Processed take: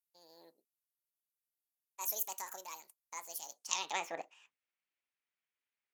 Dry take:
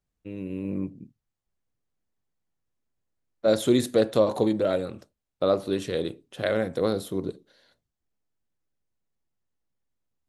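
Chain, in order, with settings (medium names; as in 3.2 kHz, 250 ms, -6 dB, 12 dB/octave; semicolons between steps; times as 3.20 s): band-pass sweep 7.4 kHz -> 1.3 kHz, 6.04–7.14 s; speed mistake 45 rpm record played at 78 rpm; trim +6.5 dB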